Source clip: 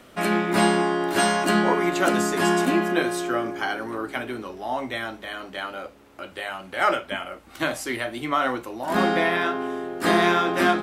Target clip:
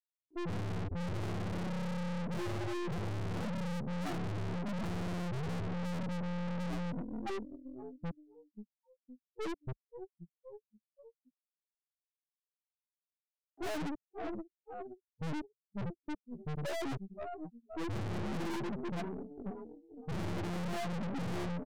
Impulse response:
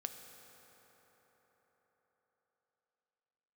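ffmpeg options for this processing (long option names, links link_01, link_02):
-filter_complex "[0:a]afftfilt=real='re*gte(hypot(re,im),0.178)':imag='im*gte(hypot(re,im),0.178)':win_size=1024:overlap=0.75,highshelf=frequency=2300:gain=-9,afftfilt=real='re*gte(hypot(re,im),0.355)':imag='im*gte(hypot(re,im),0.355)':win_size=1024:overlap=0.75,asplit=2[link_01][link_02];[link_02]asplit=3[link_03][link_04][link_05];[link_03]adelay=262,afreqshift=83,volume=-23.5dB[link_06];[link_04]adelay=524,afreqshift=166,volume=-30.6dB[link_07];[link_05]adelay=786,afreqshift=249,volume=-37.8dB[link_08];[link_06][link_07][link_08]amix=inputs=3:normalize=0[link_09];[link_01][link_09]amix=inputs=2:normalize=0,afftdn=noise_reduction=23:noise_floor=-49,asetrate=22050,aresample=44100,alimiter=limit=-19.5dB:level=0:latency=1:release=251,lowshelf=frequency=180:gain=10.5,acompressor=mode=upward:threshold=-52dB:ratio=2.5,aeval=exprs='(tanh(282*val(0)+0.65)-tanh(0.65))/282':channel_layout=same,volume=12dB"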